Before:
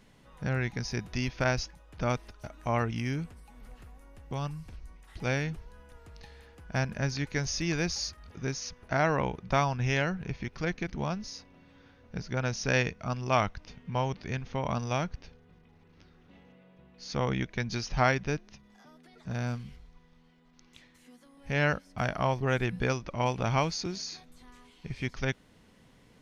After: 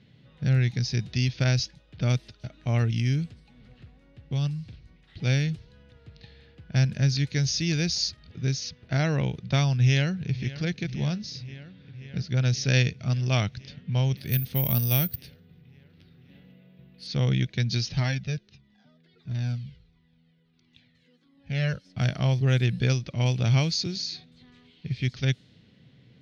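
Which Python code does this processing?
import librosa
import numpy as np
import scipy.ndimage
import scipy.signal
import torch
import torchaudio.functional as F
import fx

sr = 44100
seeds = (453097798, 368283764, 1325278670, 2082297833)

y = fx.echo_throw(x, sr, start_s=9.81, length_s=0.76, ms=530, feedback_pct=80, wet_db=-16.0)
y = fx.resample_bad(y, sr, factor=3, down='none', up='zero_stuff', at=(14.17, 17.07))
y = fx.comb_cascade(y, sr, direction='falling', hz=1.5, at=(17.98, 21.84), fade=0.02)
y = scipy.signal.sosfilt(scipy.signal.butter(2, 75.0, 'highpass', fs=sr, output='sos'), y)
y = fx.env_lowpass(y, sr, base_hz=2700.0, full_db=-25.5)
y = fx.graphic_eq(y, sr, hz=(125, 1000, 4000), db=(11, -12, 11))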